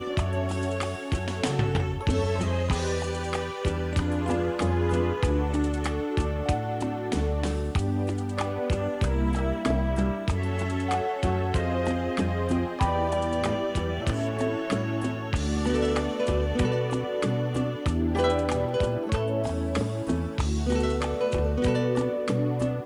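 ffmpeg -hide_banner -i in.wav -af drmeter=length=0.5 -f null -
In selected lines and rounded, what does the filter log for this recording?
Channel 1: DR: 8.7
Overall DR: 8.7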